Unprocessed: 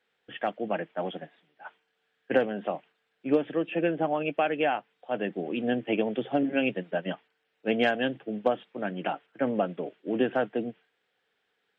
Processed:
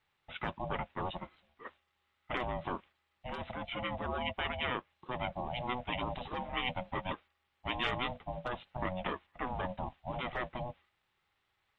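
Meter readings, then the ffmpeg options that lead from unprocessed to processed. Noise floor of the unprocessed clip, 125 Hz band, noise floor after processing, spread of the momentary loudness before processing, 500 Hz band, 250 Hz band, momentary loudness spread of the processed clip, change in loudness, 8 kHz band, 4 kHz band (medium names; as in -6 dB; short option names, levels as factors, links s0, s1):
-77 dBFS, -1.5 dB, -80 dBFS, 13 LU, -13.0 dB, -14.0 dB, 10 LU, -8.5 dB, no reading, -0.5 dB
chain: -af "aeval=exprs='val(0)*sin(2*PI*370*n/s)':c=same,afftfilt=real='re*lt(hypot(re,im),0.126)':imag='im*lt(hypot(re,im),0.126)':win_size=1024:overlap=0.75"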